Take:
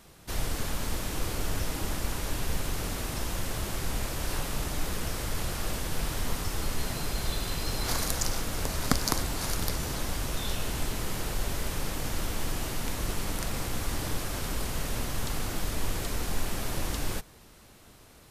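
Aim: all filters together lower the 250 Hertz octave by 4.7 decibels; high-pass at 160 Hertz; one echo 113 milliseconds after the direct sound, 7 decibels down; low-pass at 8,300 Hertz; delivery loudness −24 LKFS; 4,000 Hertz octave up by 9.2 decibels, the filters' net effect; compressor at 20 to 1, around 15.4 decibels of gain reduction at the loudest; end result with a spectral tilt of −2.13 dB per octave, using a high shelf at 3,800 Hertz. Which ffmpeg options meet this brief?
ffmpeg -i in.wav -af "highpass=160,lowpass=8300,equalizer=frequency=250:width_type=o:gain=-5,highshelf=frequency=3800:gain=8.5,equalizer=frequency=4000:width_type=o:gain=6,acompressor=threshold=-33dB:ratio=20,aecho=1:1:113:0.447,volume=10dB" out.wav

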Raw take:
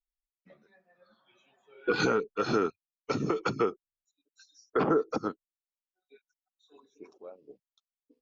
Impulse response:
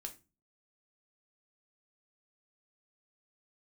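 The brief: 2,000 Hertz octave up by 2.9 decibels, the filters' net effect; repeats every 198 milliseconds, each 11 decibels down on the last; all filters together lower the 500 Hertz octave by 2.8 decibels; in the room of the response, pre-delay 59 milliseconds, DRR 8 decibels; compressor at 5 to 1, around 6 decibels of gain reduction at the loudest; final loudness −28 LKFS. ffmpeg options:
-filter_complex "[0:a]equalizer=frequency=500:width_type=o:gain=-3.5,equalizer=frequency=2000:width_type=o:gain=5,acompressor=threshold=-29dB:ratio=5,aecho=1:1:198|396|594:0.282|0.0789|0.0221,asplit=2[link_01][link_02];[1:a]atrim=start_sample=2205,adelay=59[link_03];[link_02][link_03]afir=irnorm=-1:irlink=0,volume=-4dB[link_04];[link_01][link_04]amix=inputs=2:normalize=0,volume=6.5dB"

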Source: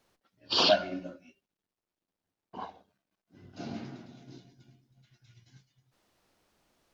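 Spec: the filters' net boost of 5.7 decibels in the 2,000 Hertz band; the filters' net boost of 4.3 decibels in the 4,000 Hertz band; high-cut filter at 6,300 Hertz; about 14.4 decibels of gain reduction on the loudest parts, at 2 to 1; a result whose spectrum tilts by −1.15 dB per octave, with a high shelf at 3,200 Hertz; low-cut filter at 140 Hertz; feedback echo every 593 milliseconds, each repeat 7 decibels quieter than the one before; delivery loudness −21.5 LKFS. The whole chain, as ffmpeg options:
ffmpeg -i in.wav -af "highpass=140,lowpass=6300,equalizer=frequency=2000:width_type=o:gain=8.5,highshelf=frequency=3200:gain=-4.5,equalizer=frequency=4000:width_type=o:gain=6.5,acompressor=threshold=-44dB:ratio=2,aecho=1:1:593|1186|1779|2372|2965:0.447|0.201|0.0905|0.0407|0.0183,volume=20.5dB" out.wav

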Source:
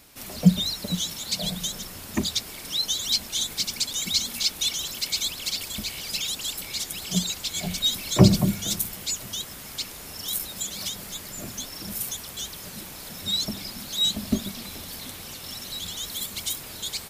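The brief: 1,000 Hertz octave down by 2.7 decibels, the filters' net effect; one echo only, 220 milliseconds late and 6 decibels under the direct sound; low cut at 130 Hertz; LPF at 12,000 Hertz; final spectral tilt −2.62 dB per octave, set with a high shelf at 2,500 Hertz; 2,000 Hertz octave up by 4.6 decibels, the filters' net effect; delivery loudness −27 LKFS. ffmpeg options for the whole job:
ffmpeg -i in.wav -af "highpass=130,lowpass=12000,equalizer=frequency=1000:width_type=o:gain=-5.5,equalizer=frequency=2000:width_type=o:gain=4,highshelf=frequency=2500:gain=5,aecho=1:1:220:0.501,volume=-4.5dB" out.wav

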